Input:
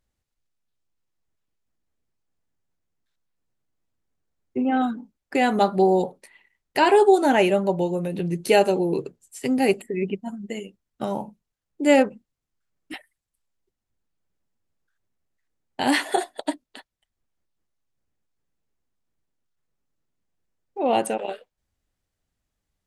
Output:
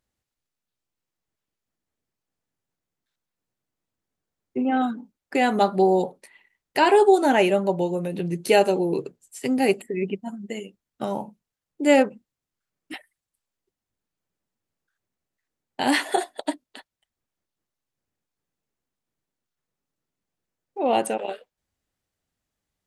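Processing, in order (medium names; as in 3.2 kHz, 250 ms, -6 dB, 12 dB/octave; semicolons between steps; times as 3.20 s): bass shelf 65 Hz -12 dB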